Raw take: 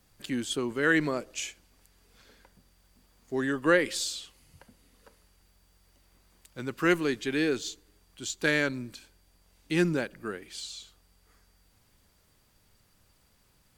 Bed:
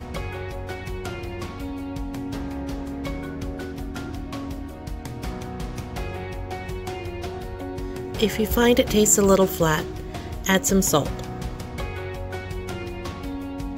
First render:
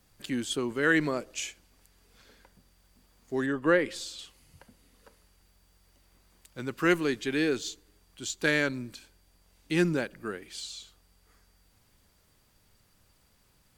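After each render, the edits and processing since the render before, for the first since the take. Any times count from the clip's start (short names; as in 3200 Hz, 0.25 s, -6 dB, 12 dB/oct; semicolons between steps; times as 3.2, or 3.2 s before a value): 3.46–4.19 high shelf 3100 Hz -10 dB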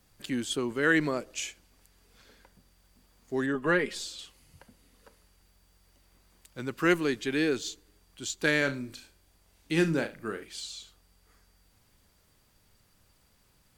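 3.54–4.07 comb 4.8 ms, depth 59%; 8.58–10.45 flutter echo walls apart 6.2 m, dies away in 0.24 s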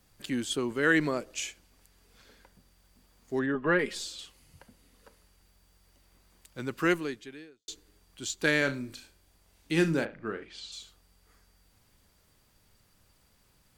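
3.39–3.79 LPF 2900 Hz; 6.81–7.68 fade out quadratic; 10.04–10.71 LPF 2200 Hz -> 4300 Hz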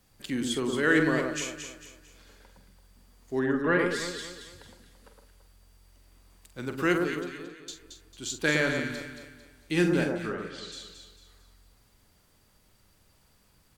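doubler 46 ms -9.5 dB; on a send: echo with dull and thin repeats by turns 0.112 s, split 1400 Hz, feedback 61%, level -3 dB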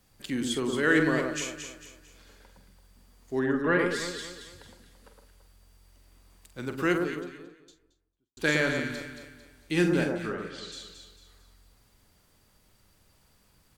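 6.67–8.37 studio fade out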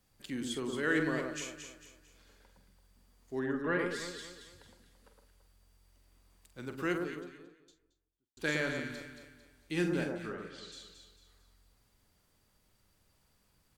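gain -7.5 dB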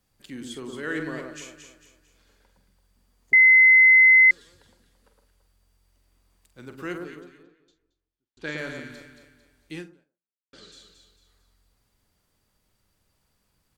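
3.33–4.31 bleep 2050 Hz -10.5 dBFS; 7.43–8.58 LPF 5300 Hz; 9.75–10.53 fade out exponential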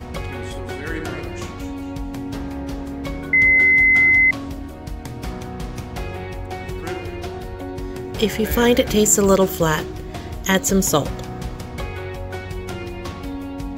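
add bed +2 dB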